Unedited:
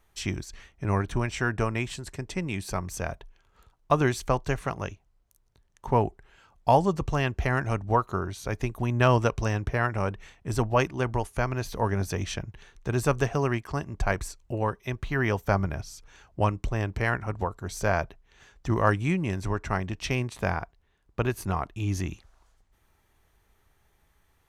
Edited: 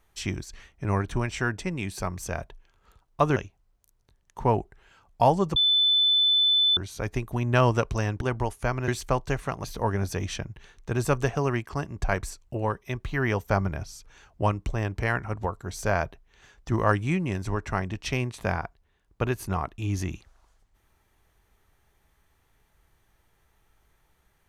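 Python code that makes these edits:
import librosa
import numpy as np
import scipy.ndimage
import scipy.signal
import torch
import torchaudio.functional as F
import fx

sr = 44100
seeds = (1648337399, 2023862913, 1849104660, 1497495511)

y = fx.edit(x, sr, fx.cut(start_s=1.58, length_s=0.71),
    fx.move(start_s=4.07, length_s=0.76, to_s=11.62),
    fx.bleep(start_s=7.03, length_s=1.21, hz=3510.0, db=-18.0),
    fx.cut(start_s=9.68, length_s=1.27), tone=tone)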